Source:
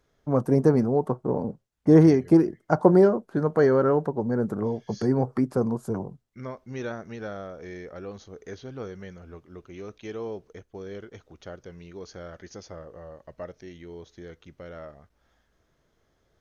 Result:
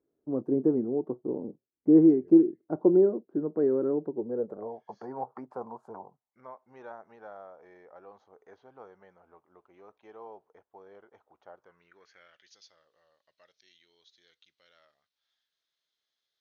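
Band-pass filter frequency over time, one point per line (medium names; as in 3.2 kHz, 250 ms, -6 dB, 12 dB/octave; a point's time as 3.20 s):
band-pass filter, Q 3.3
4.14 s 330 Hz
4.85 s 870 Hz
11.56 s 870 Hz
12.56 s 3.9 kHz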